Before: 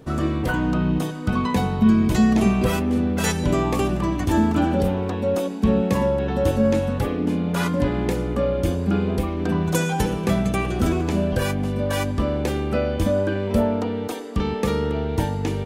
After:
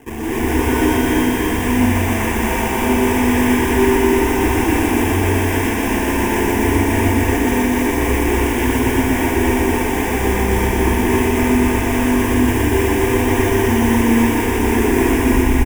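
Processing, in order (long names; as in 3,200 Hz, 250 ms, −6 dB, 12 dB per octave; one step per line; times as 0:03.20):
turntable brake at the end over 1.11 s
parametric band 240 Hz +9 dB 1.3 octaves
in parallel at +0.5 dB: speech leveller
on the sum: sample-and-hold swept by an LFO 35×, swing 160% 3.6 Hz
gain into a clipping stage and back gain 12.5 dB
phaser with its sweep stopped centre 860 Hz, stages 8
on a send: single-tap delay 292 ms −5.5 dB
on the sum: reverb whose tail is shaped and stops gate 310 ms rising, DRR −7 dB
feedback echo at a low word length 121 ms, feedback 80%, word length 6 bits, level −4.5 dB
level −8 dB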